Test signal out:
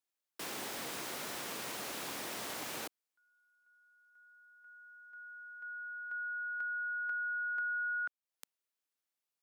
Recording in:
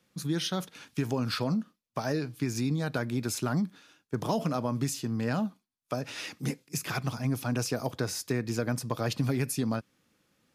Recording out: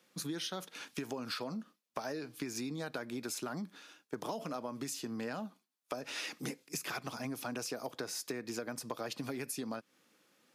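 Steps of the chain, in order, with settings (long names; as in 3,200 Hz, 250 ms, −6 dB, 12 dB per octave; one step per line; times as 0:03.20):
high-pass filter 280 Hz 12 dB per octave
downward compressor 6 to 1, threshold −39 dBFS
level +2.5 dB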